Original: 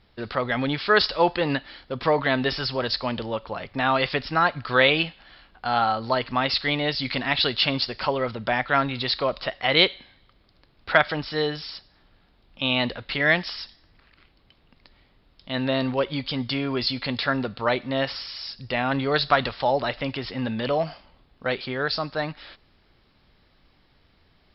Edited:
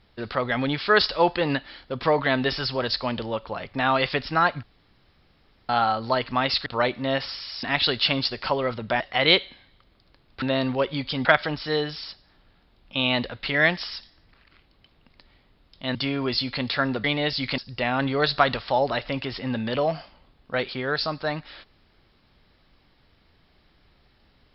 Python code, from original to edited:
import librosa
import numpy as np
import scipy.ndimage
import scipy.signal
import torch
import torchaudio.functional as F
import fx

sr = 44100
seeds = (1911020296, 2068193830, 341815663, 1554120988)

y = fx.edit(x, sr, fx.room_tone_fill(start_s=4.63, length_s=1.06),
    fx.swap(start_s=6.66, length_s=0.54, other_s=17.53, other_length_s=0.97),
    fx.cut(start_s=8.57, length_s=0.92),
    fx.move(start_s=15.61, length_s=0.83, to_s=10.91), tone=tone)